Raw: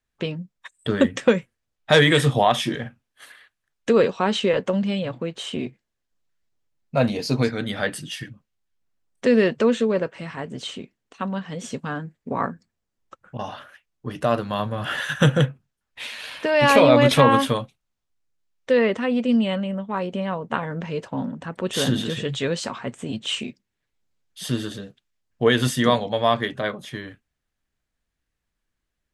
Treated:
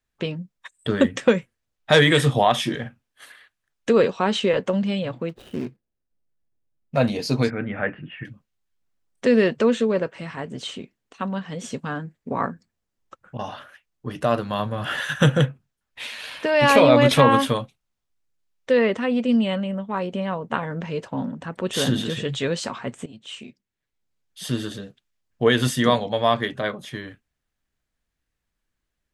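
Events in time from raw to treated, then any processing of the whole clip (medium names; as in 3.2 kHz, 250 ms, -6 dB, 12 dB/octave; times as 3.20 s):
5.29–6.97 s: median filter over 41 samples
7.50–8.25 s: Chebyshev low-pass 2.6 kHz, order 5
23.06–24.66 s: fade in, from -16.5 dB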